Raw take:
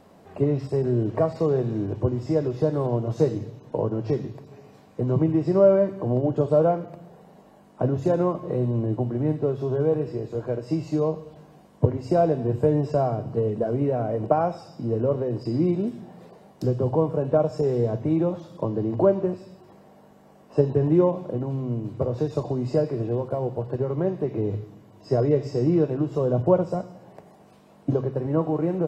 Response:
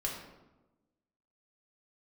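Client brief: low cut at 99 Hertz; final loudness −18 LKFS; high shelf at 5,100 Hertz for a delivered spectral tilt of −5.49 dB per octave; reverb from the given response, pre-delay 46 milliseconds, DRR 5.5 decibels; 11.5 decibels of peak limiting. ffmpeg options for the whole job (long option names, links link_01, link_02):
-filter_complex "[0:a]highpass=99,highshelf=frequency=5100:gain=7.5,alimiter=limit=-16dB:level=0:latency=1,asplit=2[link_01][link_02];[1:a]atrim=start_sample=2205,adelay=46[link_03];[link_02][link_03]afir=irnorm=-1:irlink=0,volume=-8.5dB[link_04];[link_01][link_04]amix=inputs=2:normalize=0,volume=7.5dB"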